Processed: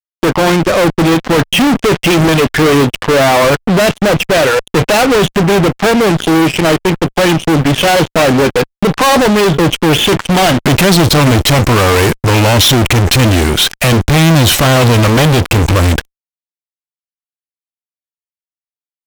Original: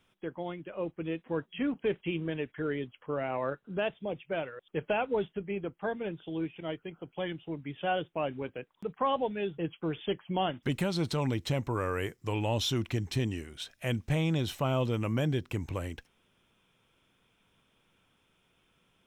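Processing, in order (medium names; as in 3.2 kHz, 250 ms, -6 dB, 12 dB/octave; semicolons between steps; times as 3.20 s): fuzz box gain 51 dB, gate -56 dBFS; Chebyshev shaper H 3 -14 dB, 6 -25 dB, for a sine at -10 dBFS; trim +8 dB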